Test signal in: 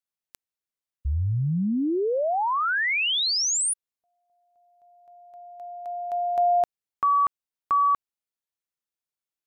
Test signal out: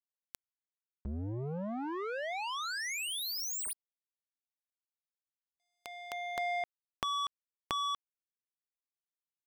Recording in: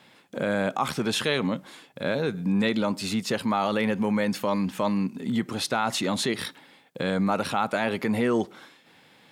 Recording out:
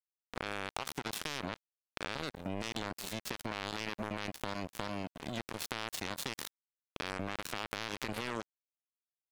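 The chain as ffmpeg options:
-af "alimiter=limit=-16.5dB:level=0:latency=1:release=17,acompressor=threshold=-34dB:ratio=6:attack=0.89:release=78:knee=1:detection=rms,acrusher=bits=4:mix=0:aa=0.5,volume=7.5dB"

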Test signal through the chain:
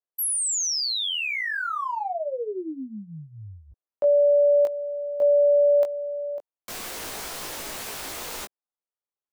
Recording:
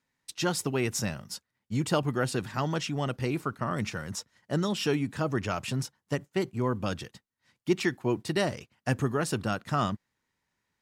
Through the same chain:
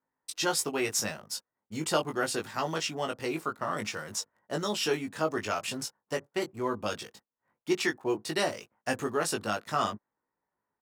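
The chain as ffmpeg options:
-filter_complex "[0:a]bass=f=250:g=-14,treble=f=4k:g=3,acrossover=split=610|1400[a][b][c];[c]aeval=exprs='sgn(val(0))*max(abs(val(0))-0.0015,0)':c=same[d];[a][b][d]amix=inputs=3:normalize=0,asplit=2[e][f];[f]adelay=19,volume=-4dB[g];[e][g]amix=inputs=2:normalize=0"

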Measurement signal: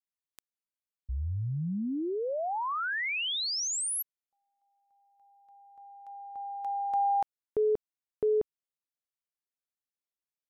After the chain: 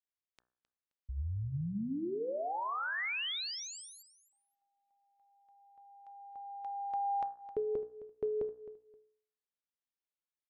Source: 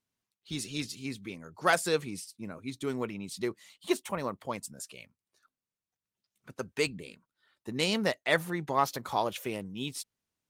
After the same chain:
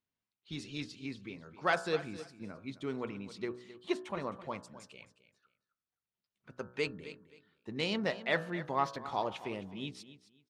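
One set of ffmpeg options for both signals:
-filter_complex "[0:a]lowpass=4.1k,bandreject=f=61.42:t=h:w=4,bandreject=f=122.84:t=h:w=4,bandreject=f=184.26:t=h:w=4,bandreject=f=245.68:t=h:w=4,bandreject=f=307.1:t=h:w=4,bandreject=f=368.52:t=h:w=4,bandreject=f=429.94:t=h:w=4,bandreject=f=491.36:t=h:w=4,bandreject=f=552.78:t=h:w=4,bandreject=f=614.2:t=h:w=4,bandreject=f=675.62:t=h:w=4,bandreject=f=737.04:t=h:w=4,bandreject=f=798.46:t=h:w=4,bandreject=f=859.88:t=h:w=4,bandreject=f=921.3:t=h:w=4,bandreject=f=982.72:t=h:w=4,bandreject=f=1.04414k:t=h:w=4,bandreject=f=1.10556k:t=h:w=4,bandreject=f=1.16698k:t=h:w=4,bandreject=f=1.2284k:t=h:w=4,bandreject=f=1.28982k:t=h:w=4,bandreject=f=1.35124k:t=h:w=4,bandreject=f=1.41266k:t=h:w=4,bandreject=f=1.47408k:t=h:w=4,bandreject=f=1.5355k:t=h:w=4,bandreject=f=1.59692k:t=h:w=4,bandreject=f=1.65834k:t=h:w=4,bandreject=f=1.71976k:t=h:w=4,bandreject=f=1.78118k:t=h:w=4,asplit=2[a][b];[b]aecho=0:1:263|526:0.178|0.0409[c];[a][c]amix=inputs=2:normalize=0,volume=-4dB"

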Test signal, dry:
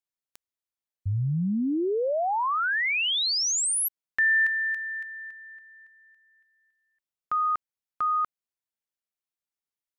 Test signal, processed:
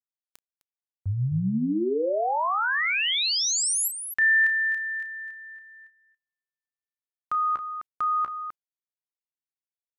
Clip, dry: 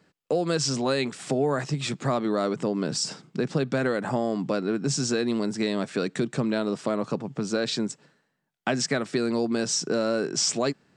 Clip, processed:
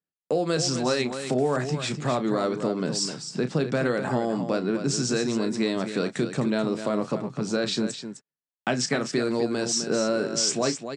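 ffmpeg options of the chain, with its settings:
-af "aecho=1:1:32.07|256.6:0.282|0.355,agate=range=-33dB:threshold=-51dB:ratio=3:release=47:detection=rms"

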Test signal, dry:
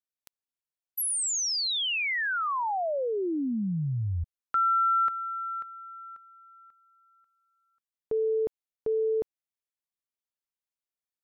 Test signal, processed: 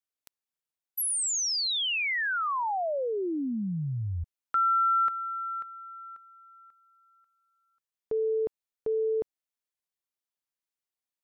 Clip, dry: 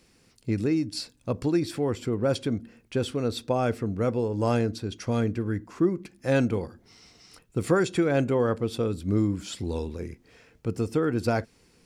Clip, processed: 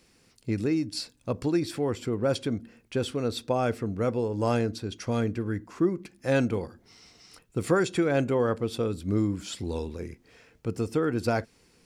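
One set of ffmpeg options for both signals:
-af "lowshelf=f=340:g=-2.5"

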